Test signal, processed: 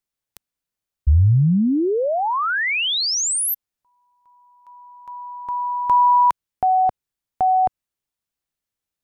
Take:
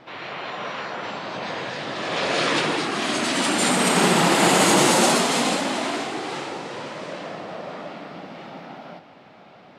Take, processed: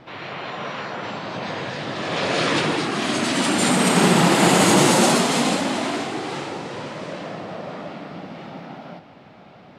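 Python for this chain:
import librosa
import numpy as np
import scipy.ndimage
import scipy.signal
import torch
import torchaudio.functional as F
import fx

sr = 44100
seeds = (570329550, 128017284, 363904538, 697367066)

y = fx.low_shelf(x, sr, hz=180.0, db=10.5)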